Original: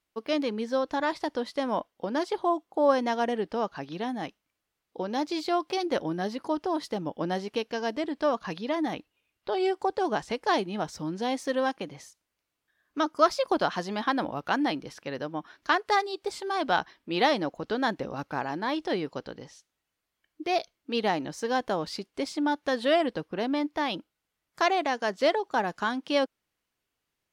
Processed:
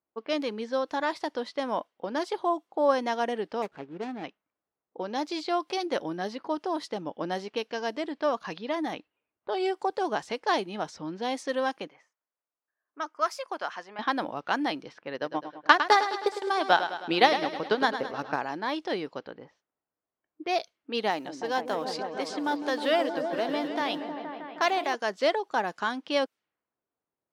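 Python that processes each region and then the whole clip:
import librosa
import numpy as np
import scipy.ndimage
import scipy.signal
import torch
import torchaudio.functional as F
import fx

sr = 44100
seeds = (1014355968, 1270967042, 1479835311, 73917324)

y = fx.chain(x, sr, fx.median_filter(points=41),
    fx.peak_eq(hz=420.0, db=5.5, octaves=0.21), at=(3.62, 4.24))
y = fx.chain(y, sr, fx.highpass(hz=1400.0, slope=6),
    fx.peak_eq(hz=3900.0, db=-10.5, octaves=0.77), at=(11.87, 13.99))
y = fx.chain(y, sr, fx.transient(attack_db=8, sustain_db=-9),
    fx.echo_feedback(ms=105, feedback_pct=57, wet_db=-10), at=(15.13, 18.36))
y = fx.chain(y, sr, fx.block_float(bits=7),
    fx.low_shelf(hz=210.0, db=-6.5),
    fx.echo_opening(ms=157, hz=400, octaves=1, feedback_pct=70, wet_db=-3), at=(21.1, 24.95))
y = fx.highpass(y, sr, hz=300.0, slope=6)
y = fx.env_lowpass(y, sr, base_hz=880.0, full_db=-27.0)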